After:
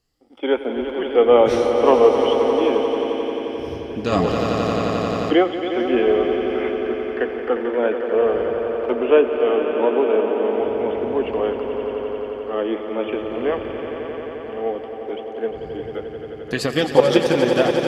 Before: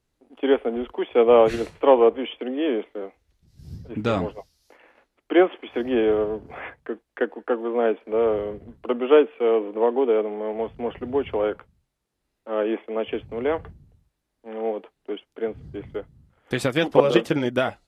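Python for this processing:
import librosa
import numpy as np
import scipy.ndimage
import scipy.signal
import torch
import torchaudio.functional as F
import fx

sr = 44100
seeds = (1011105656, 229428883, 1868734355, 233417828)

y = fx.spec_ripple(x, sr, per_octave=1.5, drift_hz=0.96, depth_db=9)
y = fx.peak_eq(y, sr, hz=5100.0, db=9.0, octaves=0.6)
y = fx.echo_swell(y, sr, ms=88, loudest=5, wet_db=-10.5)
y = fx.env_flatten(y, sr, amount_pct=50, at=(4.12, 5.39))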